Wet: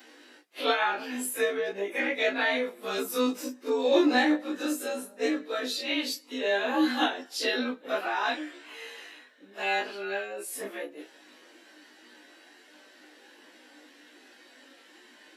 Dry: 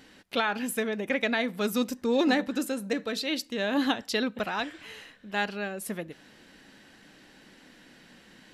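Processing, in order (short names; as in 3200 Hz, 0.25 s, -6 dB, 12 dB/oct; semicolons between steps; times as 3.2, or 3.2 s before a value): short-time reversal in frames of 40 ms; elliptic high-pass 280 Hz, stop band 70 dB; plain phase-vocoder stretch 1.8×; gain +7.5 dB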